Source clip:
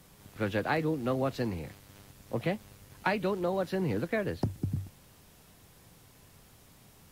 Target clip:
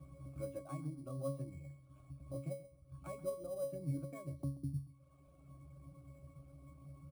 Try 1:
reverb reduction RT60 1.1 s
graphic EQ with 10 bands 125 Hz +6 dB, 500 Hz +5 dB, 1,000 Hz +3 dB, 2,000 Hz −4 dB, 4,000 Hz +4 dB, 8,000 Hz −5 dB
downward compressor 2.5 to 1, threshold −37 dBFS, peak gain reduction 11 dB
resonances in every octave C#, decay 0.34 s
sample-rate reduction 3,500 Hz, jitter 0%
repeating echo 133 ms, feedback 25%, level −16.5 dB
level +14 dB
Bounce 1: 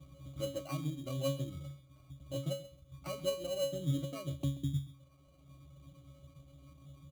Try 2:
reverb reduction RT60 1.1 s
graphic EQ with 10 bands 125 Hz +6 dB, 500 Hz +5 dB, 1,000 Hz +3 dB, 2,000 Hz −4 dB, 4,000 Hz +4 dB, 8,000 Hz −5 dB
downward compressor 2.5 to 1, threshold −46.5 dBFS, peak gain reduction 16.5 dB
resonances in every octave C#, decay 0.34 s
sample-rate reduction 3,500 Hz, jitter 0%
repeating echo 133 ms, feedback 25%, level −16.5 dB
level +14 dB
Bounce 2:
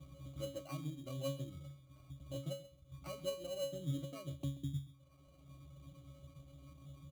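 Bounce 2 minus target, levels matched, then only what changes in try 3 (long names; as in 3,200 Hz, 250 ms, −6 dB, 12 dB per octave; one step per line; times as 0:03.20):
sample-rate reduction: distortion +8 dB
change: sample-rate reduction 9,900 Hz, jitter 0%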